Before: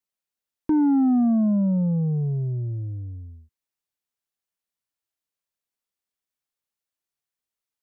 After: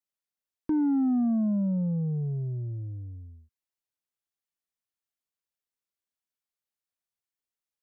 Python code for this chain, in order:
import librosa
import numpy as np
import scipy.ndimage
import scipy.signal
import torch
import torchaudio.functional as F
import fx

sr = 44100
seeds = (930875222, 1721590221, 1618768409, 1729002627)

y = fx.dynamic_eq(x, sr, hz=860.0, q=2.2, threshold_db=-44.0, ratio=4.0, max_db=-4)
y = y * 10.0 ** (-5.5 / 20.0)